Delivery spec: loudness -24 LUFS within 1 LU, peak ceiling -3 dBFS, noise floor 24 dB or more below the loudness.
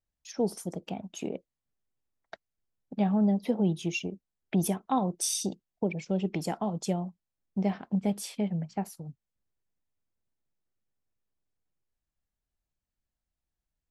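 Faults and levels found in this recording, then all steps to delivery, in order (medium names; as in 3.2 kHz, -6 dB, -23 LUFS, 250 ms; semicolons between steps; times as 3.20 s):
loudness -31.0 LUFS; peak level -14.5 dBFS; loudness target -24.0 LUFS
-> trim +7 dB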